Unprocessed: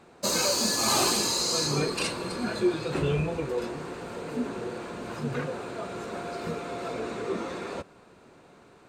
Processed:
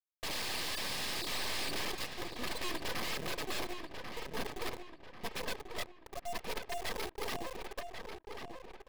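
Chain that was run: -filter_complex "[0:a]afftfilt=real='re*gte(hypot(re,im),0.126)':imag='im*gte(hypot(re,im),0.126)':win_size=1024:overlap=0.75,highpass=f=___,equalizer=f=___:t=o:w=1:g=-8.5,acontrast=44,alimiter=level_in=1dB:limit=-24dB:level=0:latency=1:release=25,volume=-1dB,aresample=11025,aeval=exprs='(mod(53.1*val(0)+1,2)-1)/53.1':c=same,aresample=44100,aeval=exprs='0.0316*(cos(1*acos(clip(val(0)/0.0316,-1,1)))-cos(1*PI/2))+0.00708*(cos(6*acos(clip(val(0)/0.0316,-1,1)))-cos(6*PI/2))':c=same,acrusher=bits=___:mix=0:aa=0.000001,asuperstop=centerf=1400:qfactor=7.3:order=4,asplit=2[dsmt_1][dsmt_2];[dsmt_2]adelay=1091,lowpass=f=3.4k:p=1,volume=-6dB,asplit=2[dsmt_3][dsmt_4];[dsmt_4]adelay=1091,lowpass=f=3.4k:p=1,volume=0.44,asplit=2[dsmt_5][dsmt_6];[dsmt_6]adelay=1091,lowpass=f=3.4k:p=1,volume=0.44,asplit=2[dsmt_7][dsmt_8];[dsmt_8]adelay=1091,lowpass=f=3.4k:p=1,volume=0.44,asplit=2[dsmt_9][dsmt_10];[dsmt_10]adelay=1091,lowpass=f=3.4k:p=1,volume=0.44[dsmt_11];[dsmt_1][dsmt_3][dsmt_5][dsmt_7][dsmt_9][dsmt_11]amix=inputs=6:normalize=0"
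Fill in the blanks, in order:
650, 2.5k, 6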